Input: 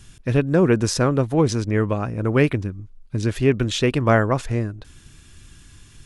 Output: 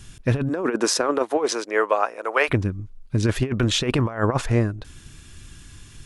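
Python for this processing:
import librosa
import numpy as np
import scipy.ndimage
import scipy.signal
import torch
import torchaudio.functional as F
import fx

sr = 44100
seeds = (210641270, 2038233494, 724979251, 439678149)

y = fx.highpass(x, sr, hz=fx.line((0.48, 240.0), (2.48, 590.0)), slope=24, at=(0.48, 2.48), fade=0.02)
y = fx.dynamic_eq(y, sr, hz=990.0, q=0.77, threshold_db=-34.0, ratio=4.0, max_db=7)
y = fx.over_compress(y, sr, threshold_db=-19.0, ratio=-0.5)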